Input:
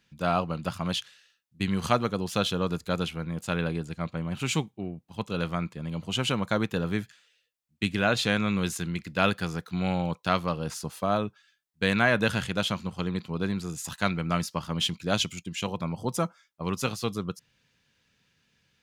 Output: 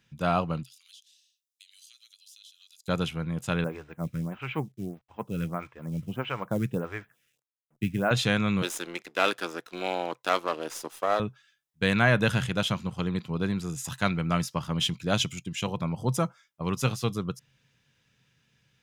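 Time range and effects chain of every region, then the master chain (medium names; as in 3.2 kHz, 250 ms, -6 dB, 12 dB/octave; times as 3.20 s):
0.63–2.88 s: inverse Chebyshev high-pass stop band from 640 Hz, stop band 80 dB + compression 4:1, threshold -51 dBFS
3.64–8.11 s: low-pass 2.5 kHz 24 dB/octave + companded quantiser 6-bit + lamp-driven phase shifter 1.6 Hz
8.62–11.20 s: partial rectifier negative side -12 dB + high-pass 310 Hz 24 dB/octave + waveshaping leveller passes 1
whole clip: peaking EQ 130 Hz +10 dB 0.32 oct; band-stop 4.4 kHz, Q 11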